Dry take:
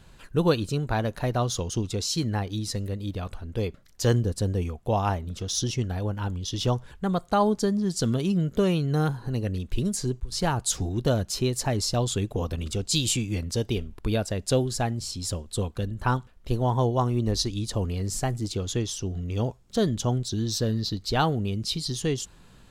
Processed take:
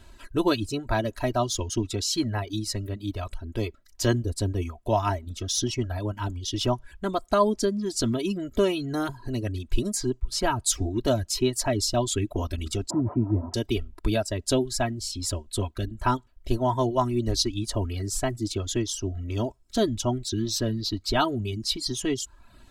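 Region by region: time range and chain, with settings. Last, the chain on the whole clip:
0:12.90–0:13.54: linear delta modulator 32 kbit/s, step −30 dBFS + Chebyshev band-pass filter 100–960 Hz, order 3 + spectral tilt −2 dB per octave
whole clip: comb filter 3.1 ms, depth 80%; reverb reduction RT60 0.61 s

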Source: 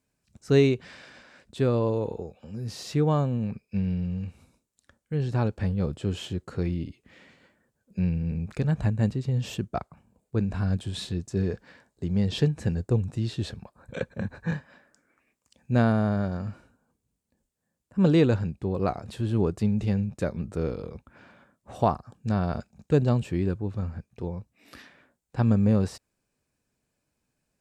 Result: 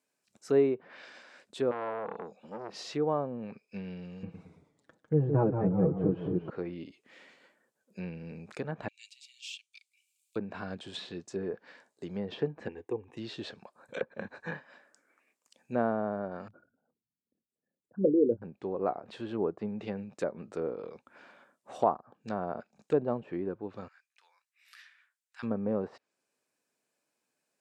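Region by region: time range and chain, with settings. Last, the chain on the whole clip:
0:01.71–0:02.79: parametric band 190 Hz +10 dB 0.67 octaves + all-pass dispersion highs, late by 62 ms, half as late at 2,600 Hz + saturating transformer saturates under 1,700 Hz
0:04.23–0:06.50: spectral tilt −4.5 dB per octave + comb filter 6.2 ms, depth 72% + delay with pitch and tempo change per echo 111 ms, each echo −1 semitone, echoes 3, each echo −6 dB
0:08.88–0:10.36: Chebyshev high-pass filter 2,300 Hz, order 6 + one half of a high-frequency compander encoder only
0:12.68–0:13.17: parametric band 7,700 Hz −10 dB 0.39 octaves + phaser with its sweep stopped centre 920 Hz, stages 8
0:16.48–0:18.42: spectral envelope exaggerated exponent 3 + double-tracking delay 26 ms −14 dB
0:23.88–0:25.43: high-pass filter 1,500 Hz 24 dB per octave + high-shelf EQ 2,200 Hz −5.5 dB
whole clip: high-pass filter 360 Hz 12 dB per octave; treble cut that deepens with the level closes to 1,100 Hz, closed at −29 dBFS; level −1 dB

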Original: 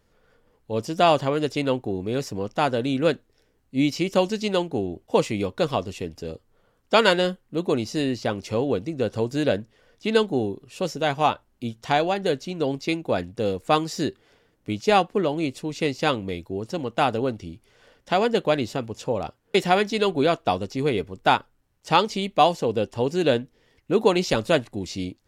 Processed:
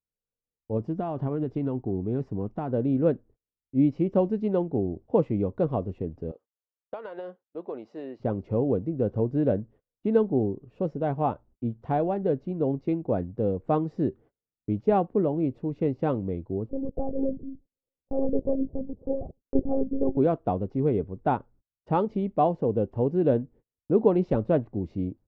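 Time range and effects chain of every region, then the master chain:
0:00.77–0:02.73: downward compressor 5 to 1, threshold −21 dBFS + parametric band 530 Hz −8 dB 0.32 octaves
0:06.31–0:08.20: high-pass filter 640 Hz + downward compressor 12 to 1, threshold −25 dBFS
0:16.69–0:20.17: inverse Chebyshev low-pass filter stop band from 2,100 Hz, stop band 60 dB + one-pitch LPC vocoder at 8 kHz 270 Hz
whole clip: noise gate −48 dBFS, range −35 dB; Bessel low-pass filter 530 Hz, order 2; parametric band 86 Hz +2.5 dB 2.7 octaves

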